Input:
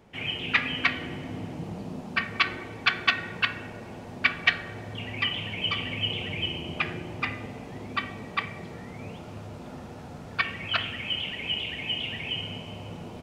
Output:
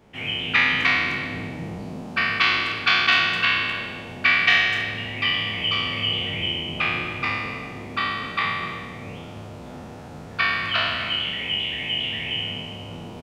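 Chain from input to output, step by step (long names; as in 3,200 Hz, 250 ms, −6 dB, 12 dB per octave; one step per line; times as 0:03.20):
peak hold with a decay on every bin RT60 1.53 s
far-end echo of a speakerphone 250 ms, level −14 dB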